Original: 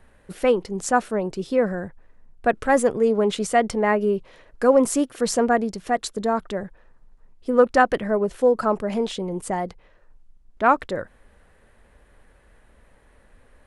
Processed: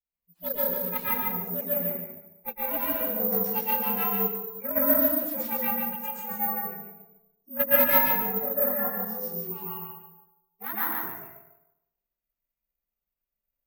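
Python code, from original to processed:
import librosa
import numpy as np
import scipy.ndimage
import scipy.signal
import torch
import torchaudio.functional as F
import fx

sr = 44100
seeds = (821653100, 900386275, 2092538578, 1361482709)

y = fx.partial_stretch(x, sr, pct=118)
y = fx.vibrato(y, sr, rate_hz=1.2, depth_cents=20.0)
y = fx.cheby_harmonics(y, sr, harmonics=(3,), levels_db=(-13,), full_scale_db=-6.5)
y = fx.noise_reduce_blind(y, sr, reduce_db=24)
y = fx.echo_feedback(y, sr, ms=146, feedback_pct=19, wet_db=-4)
y = fx.rev_plate(y, sr, seeds[0], rt60_s=0.85, hf_ratio=0.55, predelay_ms=105, drr_db=-7.0)
y = (np.kron(y[::3], np.eye(3)[0]) * 3)[:len(y)]
y = y * librosa.db_to_amplitude(-10.5)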